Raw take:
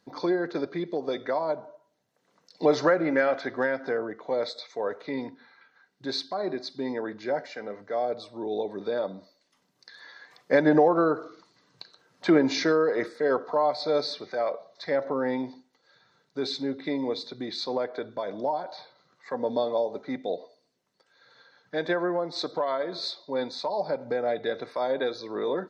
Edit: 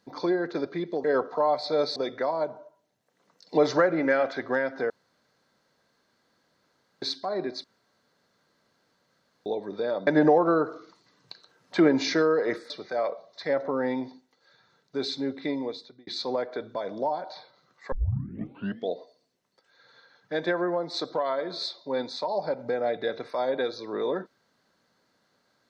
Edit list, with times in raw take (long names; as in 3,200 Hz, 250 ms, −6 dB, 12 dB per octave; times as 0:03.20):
0:03.98–0:06.10: fill with room tone
0:06.72–0:08.54: fill with room tone
0:09.15–0:10.57: remove
0:13.20–0:14.12: move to 0:01.04
0:16.90–0:17.49: fade out
0:19.34: tape start 0.98 s